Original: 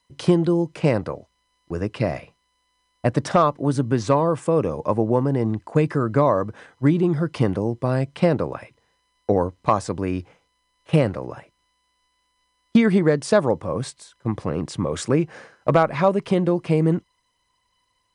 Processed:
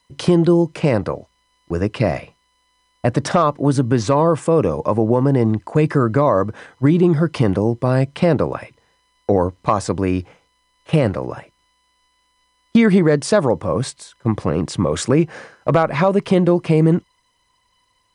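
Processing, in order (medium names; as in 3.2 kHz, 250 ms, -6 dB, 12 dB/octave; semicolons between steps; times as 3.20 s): peak limiter -10.5 dBFS, peak gain reduction 5 dB; trim +6 dB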